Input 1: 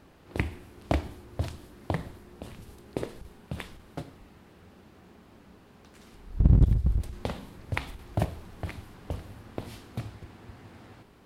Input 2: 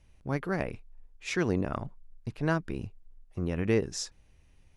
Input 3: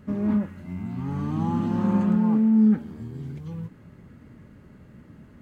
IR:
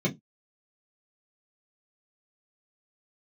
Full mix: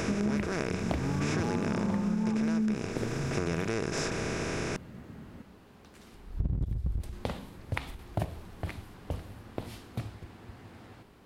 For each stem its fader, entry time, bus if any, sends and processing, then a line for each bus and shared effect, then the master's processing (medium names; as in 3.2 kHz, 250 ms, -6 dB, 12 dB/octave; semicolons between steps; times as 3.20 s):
-0.5 dB, 0.00 s, no send, none
-3.5 dB, 0.00 s, no send, spectral levelling over time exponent 0.2
+1.0 dB, 0.00 s, no send, none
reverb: none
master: compression 10:1, threshold -26 dBFS, peak gain reduction 13 dB